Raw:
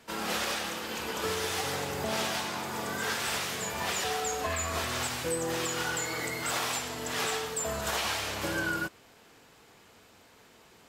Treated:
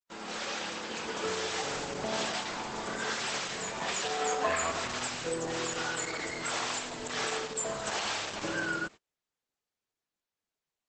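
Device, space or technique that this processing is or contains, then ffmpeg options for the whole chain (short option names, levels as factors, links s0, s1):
video call: -filter_complex "[0:a]asplit=3[s0][s1][s2];[s0]afade=t=out:st=4.19:d=0.02[s3];[s1]equalizer=f=940:w=0.32:g=5.5,afade=t=in:st=4.19:d=0.02,afade=t=out:st=4.7:d=0.02[s4];[s2]afade=t=in:st=4.7:d=0.02[s5];[s3][s4][s5]amix=inputs=3:normalize=0,highpass=150,dynaudnorm=f=320:g=3:m=2.11,agate=range=0.01:threshold=0.0141:ratio=16:detection=peak,volume=0.447" -ar 48000 -c:a libopus -b:a 12k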